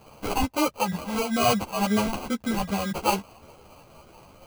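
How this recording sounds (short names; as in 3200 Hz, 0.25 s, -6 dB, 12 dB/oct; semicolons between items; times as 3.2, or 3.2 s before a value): phasing stages 2, 2.2 Hz, lowest notch 330–4200 Hz; aliases and images of a low sample rate 1800 Hz, jitter 0%; a shimmering, thickened sound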